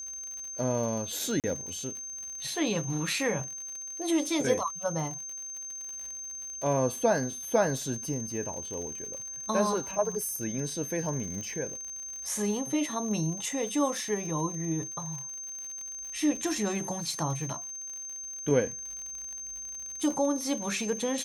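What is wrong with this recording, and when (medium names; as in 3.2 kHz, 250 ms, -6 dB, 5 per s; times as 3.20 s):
crackle 79 per s -37 dBFS
whine 6.3 kHz -37 dBFS
1.40–1.44 s: dropout 38 ms
11.41 s: pop -26 dBFS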